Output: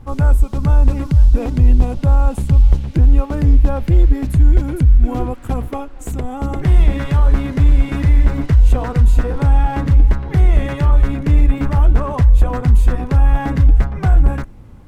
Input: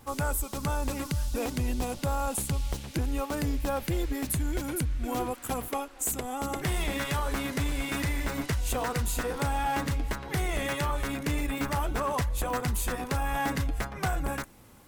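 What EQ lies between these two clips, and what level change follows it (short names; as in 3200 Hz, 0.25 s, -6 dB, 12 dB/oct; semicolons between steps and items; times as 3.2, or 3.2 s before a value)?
RIAA curve playback; +4.5 dB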